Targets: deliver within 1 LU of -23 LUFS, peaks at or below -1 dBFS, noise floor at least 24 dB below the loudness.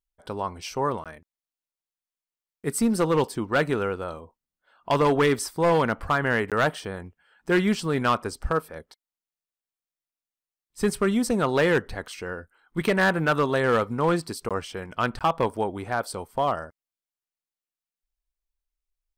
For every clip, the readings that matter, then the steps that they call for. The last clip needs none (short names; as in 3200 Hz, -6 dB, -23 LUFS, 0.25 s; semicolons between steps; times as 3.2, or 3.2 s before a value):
clipped 1.1%; flat tops at -15.0 dBFS; dropouts 4; longest dropout 17 ms; loudness -25.0 LUFS; peak -15.0 dBFS; loudness target -23.0 LUFS
-> clip repair -15 dBFS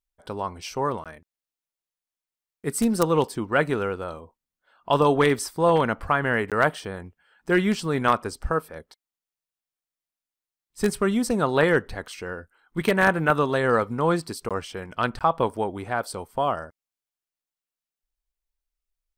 clipped 0.0%; dropouts 4; longest dropout 17 ms
-> interpolate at 1.04/6.5/14.49/15.19, 17 ms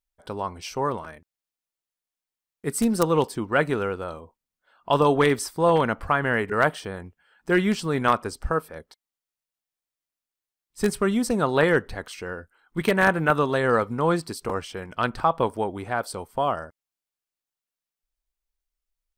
dropouts 0; loudness -24.0 LUFS; peak -6.0 dBFS; loudness target -23.0 LUFS
-> gain +1 dB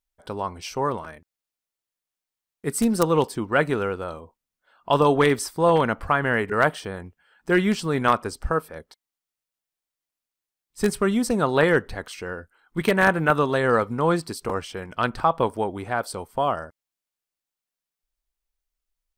loudness -23.0 LUFS; peak -5.0 dBFS; noise floor -89 dBFS